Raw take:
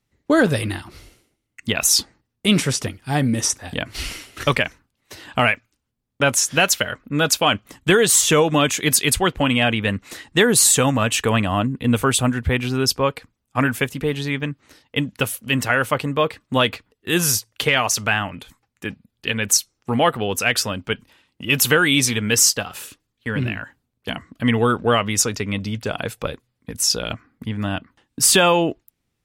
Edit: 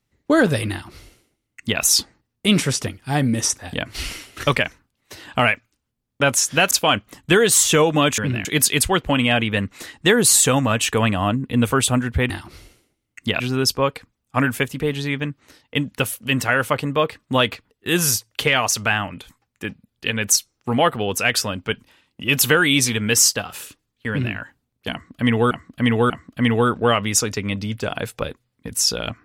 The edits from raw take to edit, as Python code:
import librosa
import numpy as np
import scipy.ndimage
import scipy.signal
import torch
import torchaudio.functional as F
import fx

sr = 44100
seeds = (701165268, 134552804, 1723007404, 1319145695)

y = fx.edit(x, sr, fx.duplicate(start_s=0.71, length_s=1.1, to_s=12.61),
    fx.cut(start_s=6.71, length_s=0.58),
    fx.duplicate(start_s=23.3, length_s=0.27, to_s=8.76),
    fx.repeat(start_s=24.13, length_s=0.59, count=3), tone=tone)